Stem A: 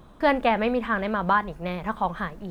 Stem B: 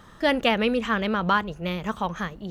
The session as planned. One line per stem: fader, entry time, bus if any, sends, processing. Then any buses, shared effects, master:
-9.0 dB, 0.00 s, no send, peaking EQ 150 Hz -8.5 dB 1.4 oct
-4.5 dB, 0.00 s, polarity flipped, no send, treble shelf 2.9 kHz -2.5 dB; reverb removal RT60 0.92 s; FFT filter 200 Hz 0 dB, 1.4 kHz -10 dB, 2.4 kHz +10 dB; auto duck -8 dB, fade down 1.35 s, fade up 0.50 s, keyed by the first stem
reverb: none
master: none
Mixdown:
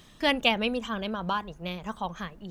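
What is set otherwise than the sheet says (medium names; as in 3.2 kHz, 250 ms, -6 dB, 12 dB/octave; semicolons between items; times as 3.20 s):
stem A: missing peaking EQ 150 Hz -8.5 dB 1.4 oct; stem B: polarity flipped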